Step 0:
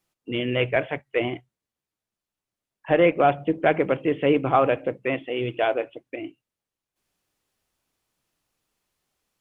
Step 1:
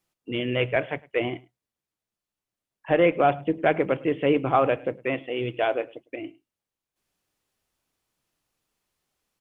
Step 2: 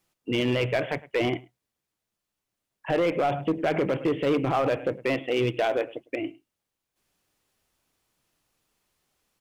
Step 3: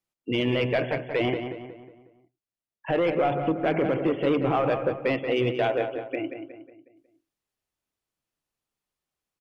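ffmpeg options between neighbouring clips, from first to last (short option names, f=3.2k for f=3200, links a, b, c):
-af "aecho=1:1:105:0.0668,volume=-1.5dB"
-af "alimiter=limit=-18.5dB:level=0:latency=1:release=28,volume=23dB,asoftclip=hard,volume=-23dB,volume=4.5dB"
-filter_complex "[0:a]afftdn=nr=14:nf=-43,asplit=2[a][b];[b]adelay=182,lowpass=f=2.8k:p=1,volume=-7.5dB,asplit=2[c][d];[d]adelay=182,lowpass=f=2.8k:p=1,volume=0.46,asplit=2[e][f];[f]adelay=182,lowpass=f=2.8k:p=1,volume=0.46,asplit=2[g][h];[h]adelay=182,lowpass=f=2.8k:p=1,volume=0.46,asplit=2[i][j];[j]adelay=182,lowpass=f=2.8k:p=1,volume=0.46[k];[c][e][g][i][k]amix=inputs=5:normalize=0[l];[a][l]amix=inputs=2:normalize=0"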